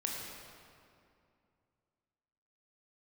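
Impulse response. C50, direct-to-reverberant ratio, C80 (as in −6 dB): 0.5 dB, −2.0 dB, 1.5 dB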